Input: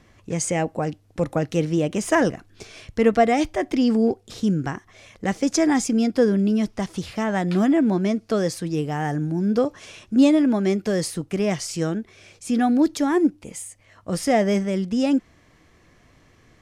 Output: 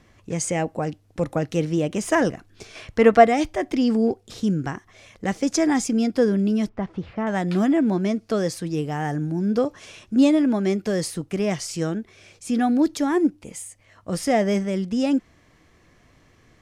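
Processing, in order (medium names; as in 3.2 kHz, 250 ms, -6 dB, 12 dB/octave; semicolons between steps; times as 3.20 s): 2.75–3.27 s: peaking EQ 1.1 kHz +7.5 dB 2.9 oct; 6.69–7.27 s: low-pass 1.7 kHz 12 dB/octave; trim -1 dB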